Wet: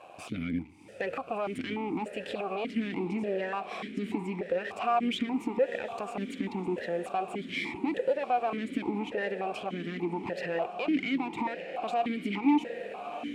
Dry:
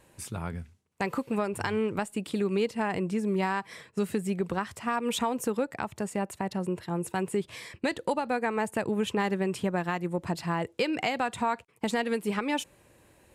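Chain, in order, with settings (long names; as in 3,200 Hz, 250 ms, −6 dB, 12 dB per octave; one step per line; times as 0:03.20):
gain on one half-wave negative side −12 dB
downward compressor 4 to 1, threshold −38 dBFS, peak gain reduction 12 dB
feedback delay with all-pass diffusion 673 ms, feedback 69%, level −14 dB
boost into a limiter +32.5 dB
formant filter that steps through the vowels 3.4 Hz
level −6.5 dB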